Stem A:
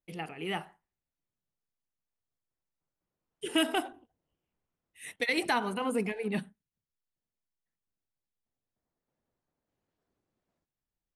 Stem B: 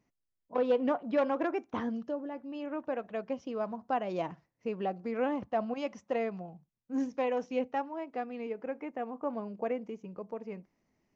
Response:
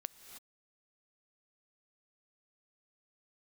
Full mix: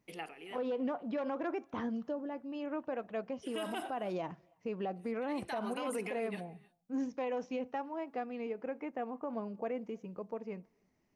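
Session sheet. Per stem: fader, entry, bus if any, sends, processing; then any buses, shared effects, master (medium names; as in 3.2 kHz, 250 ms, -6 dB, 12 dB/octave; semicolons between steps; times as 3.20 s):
-1.5 dB, 0.00 s, send -7 dB, high-pass 320 Hz 12 dB/octave; logarithmic tremolo 0.5 Hz, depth 27 dB
-1.5 dB, 0.00 s, send -20 dB, none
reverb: on, pre-delay 3 ms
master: peak limiter -28.5 dBFS, peak gain reduction 10 dB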